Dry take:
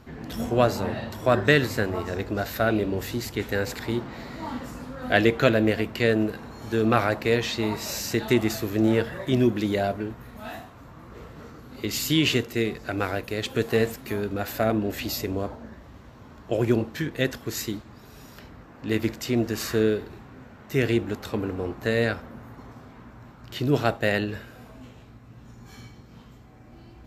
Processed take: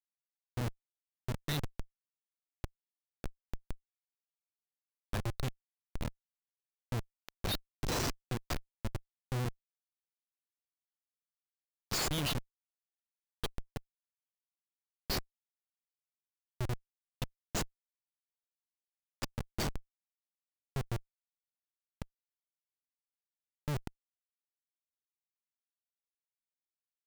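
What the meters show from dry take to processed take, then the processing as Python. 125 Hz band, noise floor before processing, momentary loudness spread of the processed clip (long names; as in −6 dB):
−11.5 dB, −48 dBFS, 16 LU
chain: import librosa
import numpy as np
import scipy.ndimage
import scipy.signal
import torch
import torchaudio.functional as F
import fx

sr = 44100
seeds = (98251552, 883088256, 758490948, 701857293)

p1 = fx.bin_expand(x, sr, power=2.0)
p2 = fx.graphic_eq(p1, sr, hz=(125, 250, 500, 1000, 2000, 4000, 8000), db=(5, -6, -11, -10, -7, 11, 8))
p3 = p2 + fx.echo_feedback(p2, sr, ms=898, feedback_pct=32, wet_db=-22.0, dry=0)
p4 = fx.schmitt(p3, sr, flips_db=-25.0)
y = F.gain(torch.from_numpy(p4), 1.5).numpy()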